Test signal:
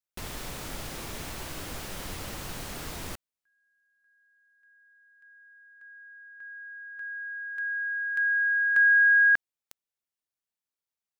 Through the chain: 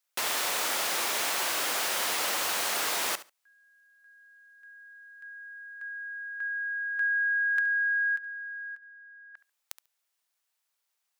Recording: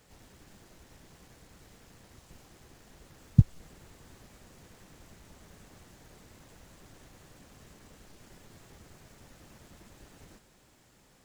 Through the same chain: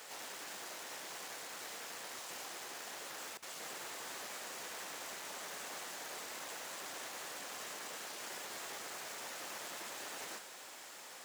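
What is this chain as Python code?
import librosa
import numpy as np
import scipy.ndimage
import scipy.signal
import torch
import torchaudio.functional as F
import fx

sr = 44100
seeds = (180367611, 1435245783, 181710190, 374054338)

y = fx.over_compress(x, sr, threshold_db=-33.0, ratio=-0.5)
y = scipy.signal.sosfilt(scipy.signal.butter(2, 650.0, 'highpass', fs=sr, output='sos'), y)
y = fx.echo_feedback(y, sr, ms=71, feedback_pct=16, wet_db=-16.0)
y = F.gain(torch.from_numpy(y), 6.0).numpy()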